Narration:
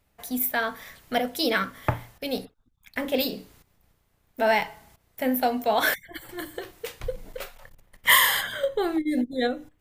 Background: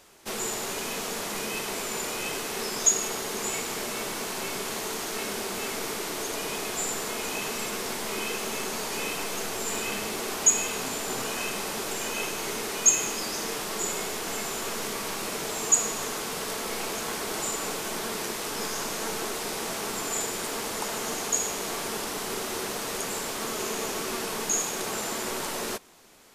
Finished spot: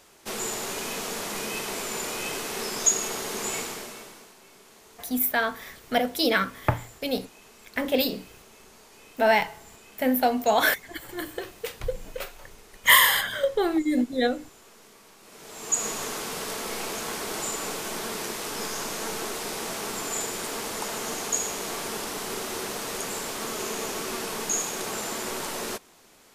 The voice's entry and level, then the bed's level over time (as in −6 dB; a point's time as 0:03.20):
4.80 s, +1.5 dB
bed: 0:03.61 0 dB
0:04.38 −20.5 dB
0:15.20 −20.5 dB
0:15.86 −0.5 dB